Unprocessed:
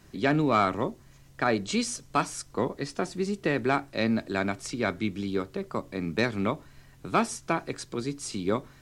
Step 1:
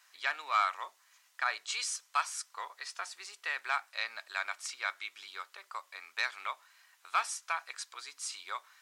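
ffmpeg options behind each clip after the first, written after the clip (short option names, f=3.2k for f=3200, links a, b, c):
-af "highpass=f=1k:w=0.5412,highpass=f=1k:w=1.3066,volume=-2dB"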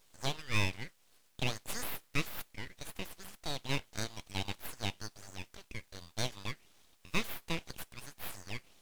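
-af "aeval=exprs='abs(val(0))':c=same"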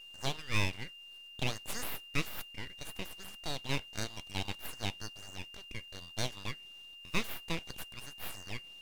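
-af "aeval=exprs='val(0)+0.00355*sin(2*PI*2800*n/s)':c=same"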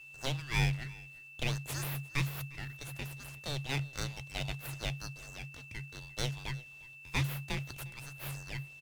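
-af "afreqshift=-140,aecho=1:1:354:0.0794"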